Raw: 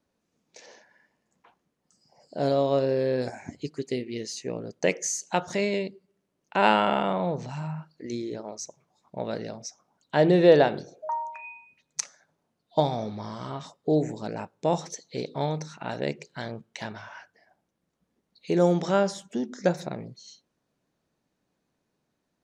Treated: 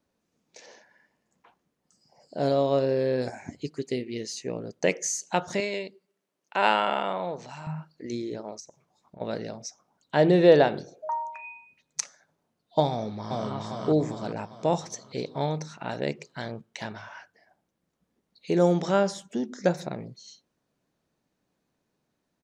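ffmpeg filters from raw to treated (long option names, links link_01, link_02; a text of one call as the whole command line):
ffmpeg -i in.wav -filter_complex "[0:a]asettb=1/sr,asplit=3[link_01][link_02][link_03];[link_01]atrim=end=5.604[link_04];[link_02]atrim=start=5.6:end=7.67,asetpts=PTS-STARTPTS,afade=type=in:duration=0.004:curve=qsin,afade=type=out:start_time=2.066:duration=0.004:curve=qsin,highpass=frequency=560:poles=1[link_05];[link_03]atrim=start=7.666[link_06];[link_04][link_05]acrossfade=duration=0.004:curve1=hsin:curve2=qsin[link_07];[link_07][link_06]acrossfade=duration=0.004:curve1=qsin:curve2=hsin,asplit=3[link_08][link_09][link_10];[link_08]afade=type=out:start_time=8.59:duration=0.02[link_11];[link_09]acompressor=threshold=-43dB:ratio=12:attack=3.2:release=140:knee=1:detection=peak,afade=type=in:start_time=8.59:duration=0.02,afade=type=out:start_time=9.2:duration=0.02[link_12];[link_10]afade=type=in:start_time=9.2:duration=0.02[link_13];[link_11][link_12][link_13]amix=inputs=3:normalize=0,asplit=2[link_14][link_15];[link_15]afade=type=in:start_time=12.9:duration=0.01,afade=type=out:start_time=13.52:duration=0.01,aecho=0:1:400|800|1200|1600|2000|2400|2800:0.944061|0.47203|0.236015|0.118008|0.0590038|0.0295019|0.014751[link_16];[link_14][link_16]amix=inputs=2:normalize=0" out.wav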